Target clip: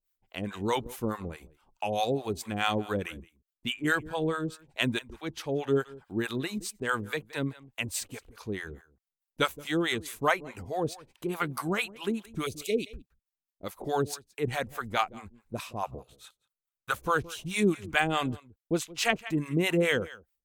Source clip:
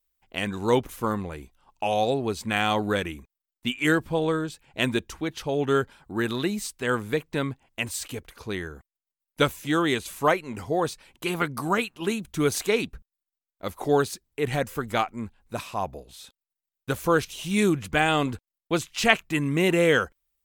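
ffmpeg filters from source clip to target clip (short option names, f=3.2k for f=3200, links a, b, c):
-filter_complex "[0:a]asettb=1/sr,asplit=3[a][b][c];[a]atrim=end=1.854[d];[b]atrim=start=1.85:end=2.51,asetpts=PTS-STARTPTS,afade=t=in:d=0.004:c=qsin,afade=t=out:st=0.656:d=0.004:c=qsin,highshelf=f=6.7k:g=7[e];[c]atrim=start=2.506[f];[d][e]acrossfade=d=0.004:c1=hsin:c2=qsin[g];[g][f]acrossfade=d=0.004:c1=qsin:c2=hsin,asplit=3[h][i][j];[h]afade=t=out:st=12.45:d=0.02[k];[i]asuperstop=centerf=1200:order=8:qfactor=0.7,afade=t=in:st=12.45:d=0.02,afade=t=out:st=12.85:d=0.02[l];[j]afade=t=in:st=12.85:d=0.02[m];[k][l][m]amix=inputs=3:normalize=0,aecho=1:1:170:0.1,acrossover=split=600[n][o];[n]aeval=exprs='val(0)*(1-1/2+1/2*cos(2*PI*4.7*n/s))':c=same[p];[o]aeval=exprs='val(0)*(1-1/2-1/2*cos(2*PI*4.7*n/s))':c=same[q];[p][q]amix=inputs=2:normalize=0,asettb=1/sr,asplit=3[r][s][t];[r]atrim=end=15.834[u];[s]atrim=start=15.83:end=16.95,asetpts=PTS-STARTPTS,afade=t=in:d=0.004:c=qsin,afade=t=out:st=1.116:d=0.004:c=qsin,equalizer=f=125:t=o:w=0.33:g=10,equalizer=f=1.25k:t=o:w=0.33:g=10,equalizer=f=5k:t=o:w=0.33:g=-6[v];[t]atrim=start=16.946[w];[u][v]acrossfade=d=0.004:c1=hsin:c2=qsin[x];[x][w]acrossfade=d=0.004:c1=qsin:c2=hsin"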